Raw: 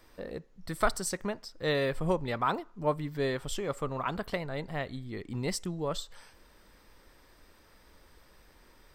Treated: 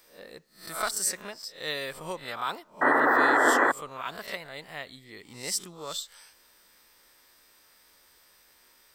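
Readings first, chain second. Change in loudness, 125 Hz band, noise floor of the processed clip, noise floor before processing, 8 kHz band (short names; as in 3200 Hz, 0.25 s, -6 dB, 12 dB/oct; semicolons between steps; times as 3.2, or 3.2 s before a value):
+6.5 dB, -14.0 dB, -61 dBFS, -60 dBFS, +8.5 dB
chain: spectral swells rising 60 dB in 0.38 s; tilt +3.5 dB/oct; painted sound noise, 2.81–3.72, 240–2000 Hz -17 dBFS; gain -4.5 dB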